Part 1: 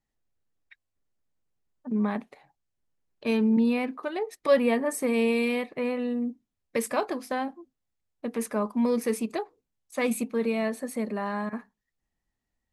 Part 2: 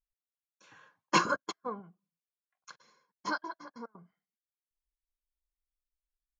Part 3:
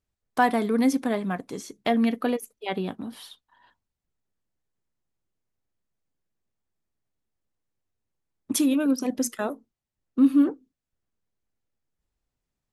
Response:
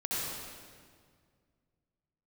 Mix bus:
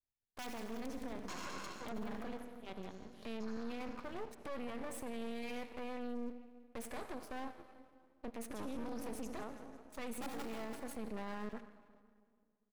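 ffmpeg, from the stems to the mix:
-filter_complex "[0:a]volume=-3.5dB,asplit=2[link_01][link_02];[link_02]volume=-24dB[link_03];[1:a]highshelf=frequency=5400:gain=10,adelay=150,volume=-10.5dB,asplit=2[link_04][link_05];[link_05]volume=-8.5dB[link_06];[2:a]highshelf=frequency=6400:gain=-11,bandreject=frequency=60:width_type=h:width=6,bandreject=frequency=120:width_type=h:width=6,bandreject=frequency=180:width_type=h:width=6,bandreject=frequency=240:width_type=h:width=6,bandreject=frequency=300:width_type=h:width=6,aeval=exprs='(mod(3.98*val(0)+1,2)-1)/3.98':channel_layout=same,volume=-16.5dB,asplit=3[link_07][link_08][link_09];[link_08]volume=-12.5dB[link_10];[link_09]volume=-11.5dB[link_11];[link_01][link_04]amix=inputs=2:normalize=0,aeval=exprs='sgn(val(0))*max(abs(val(0))-0.00237,0)':channel_layout=same,alimiter=level_in=5dB:limit=-24dB:level=0:latency=1:release=291,volume=-5dB,volume=0dB[link_12];[3:a]atrim=start_sample=2205[link_13];[link_03][link_06][link_10]amix=inputs=3:normalize=0[link_14];[link_14][link_13]afir=irnorm=-1:irlink=0[link_15];[link_11]aecho=0:1:167|334|501|668|835|1002|1169|1336:1|0.53|0.281|0.149|0.0789|0.0418|0.0222|0.0117[link_16];[link_07][link_12][link_15][link_16]amix=inputs=4:normalize=0,aeval=exprs='max(val(0),0)':channel_layout=same,alimiter=level_in=9dB:limit=-24dB:level=0:latency=1:release=12,volume=-9dB"

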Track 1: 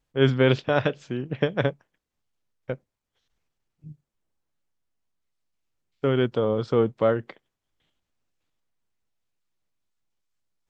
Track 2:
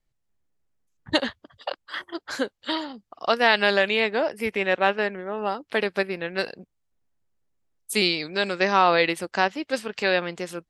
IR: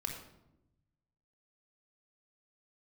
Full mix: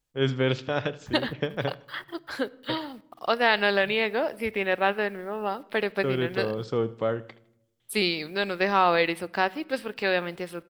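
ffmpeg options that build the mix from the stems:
-filter_complex "[0:a]highshelf=frequency=4400:gain=10.5,volume=-6.5dB,asplit=3[link_01][link_02][link_03];[link_02]volume=-18dB[link_04];[link_03]volume=-18.5dB[link_05];[1:a]lowshelf=frequency=81:gain=8,acrusher=bits=8:mix=0:aa=0.000001,equalizer=frequency=6700:width=2.5:gain=-14,volume=-3.5dB,asplit=2[link_06][link_07];[link_07]volume=-16.5dB[link_08];[2:a]atrim=start_sample=2205[link_09];[link_04][link_08]amix=inputs=2:normalize=0[link_10];[link_10][link_09]afir=irnorm=-1:irlink=0[link_11];[link_05]aecho=0:1:79|158|237|316|395:1|0.36|0.13|0.0467|0.0168[link_12];[link_01][link_06][link_11][link_12]amix=inputs=4:normalize=0"

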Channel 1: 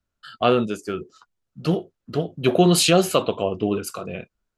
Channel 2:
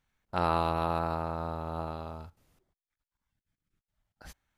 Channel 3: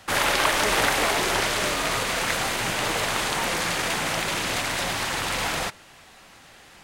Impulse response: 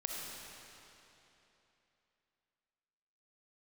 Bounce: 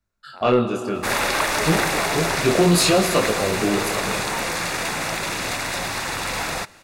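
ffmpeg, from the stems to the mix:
-filter_complex "[0:a]flanger=delay=18.5:depth=7.1:speed=0.62,volume=2dB,asplit=2[link_01][link_02];[link_02]volume=-7.5dB[link_03];[1:a]highpass=510,volume=-12dB[link_04];[2:a]adelay=950,volume=1dB[link_05];[3:a]atrim=start_sample=2205[link_06];[link_03][link_06]afir=irnorm=-1:irlink=0[link_07];[link_01][link_04][link_05][link_07]amix=inputs=4:normalize=0,bandreject=frequency=3100:width=6.9,asoftclip=type=tanh:threshold=-8dB"

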